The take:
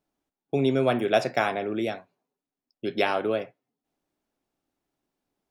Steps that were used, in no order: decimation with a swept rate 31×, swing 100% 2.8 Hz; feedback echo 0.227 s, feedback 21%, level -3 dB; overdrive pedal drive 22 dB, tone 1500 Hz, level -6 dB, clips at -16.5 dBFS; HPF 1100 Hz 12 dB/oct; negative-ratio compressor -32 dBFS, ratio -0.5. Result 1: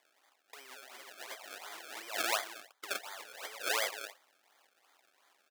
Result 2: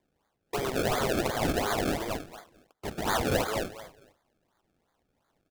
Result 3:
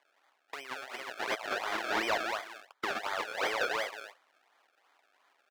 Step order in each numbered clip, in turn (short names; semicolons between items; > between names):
feedback echo > overdrive pedal > negative-ratio compressor > decimation with a swept rate > HPF; HPF > negative-ratio compressor > overdrive pedal > feedback echo > decimation with a swept rate; feedback echo > negative-ratio compressor > decimation with a swept rate > HPF > overdrive pedal